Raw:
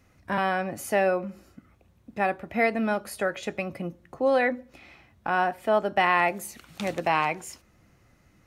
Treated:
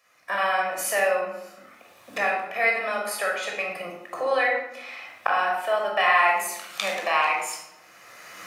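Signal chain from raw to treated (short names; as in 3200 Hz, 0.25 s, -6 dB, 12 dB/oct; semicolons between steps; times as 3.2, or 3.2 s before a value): recorder AGC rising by 20 dB/s; HPF 890 Hz 12 dB/oct; shoebox room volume 2700 m³, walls furnished, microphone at 5.9 m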